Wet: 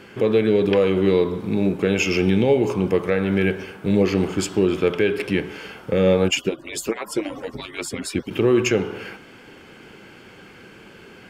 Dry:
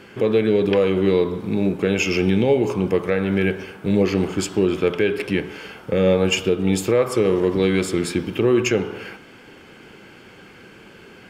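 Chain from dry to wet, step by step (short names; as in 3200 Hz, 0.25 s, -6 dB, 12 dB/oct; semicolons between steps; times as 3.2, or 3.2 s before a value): 6.28–8.31 median-filter separation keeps percussive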